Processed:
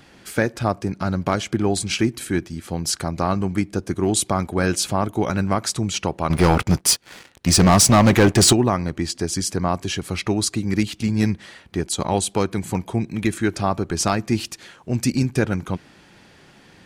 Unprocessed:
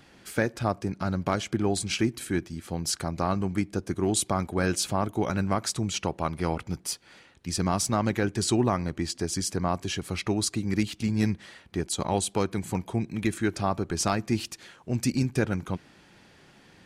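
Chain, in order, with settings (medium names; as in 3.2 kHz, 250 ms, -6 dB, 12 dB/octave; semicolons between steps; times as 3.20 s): 6.30–8.53 s: waveshaping leveller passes 3; trim +5.5 dB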